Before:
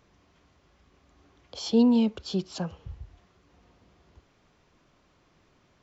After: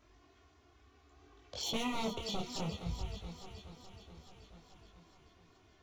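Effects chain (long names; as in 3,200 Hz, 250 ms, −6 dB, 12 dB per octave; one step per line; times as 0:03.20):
wave folding −29.5 dBFS
flanger swept by the level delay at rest 3.2 ms, full sweep at −35.5 dBFS
on a send: delay that swaps between a low-pass and a high-pass 214 ms, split 1,500 Hz, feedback 80%, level −9 dB
on the sum: micro pitch shift up and down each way 22 cents
level +4.5 dB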